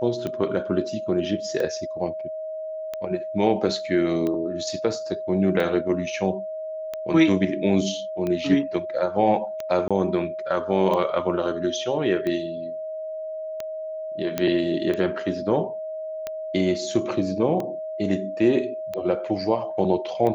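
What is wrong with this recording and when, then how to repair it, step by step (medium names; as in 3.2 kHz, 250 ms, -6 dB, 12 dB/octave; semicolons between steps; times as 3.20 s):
tick 45 rpm -16 dBFS
whine 630 Hz -29 dBFS
9.88–9.91 s: dropout 26 ms
14.38 s: pop -9 dBFS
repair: de-click; band-stop 630 Hz, Q 30; interpolate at 9.88 s, 26 ms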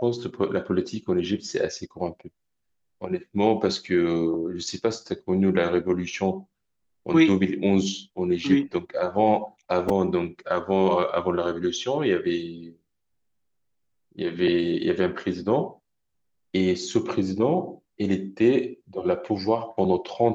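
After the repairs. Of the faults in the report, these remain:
14.38 s: pop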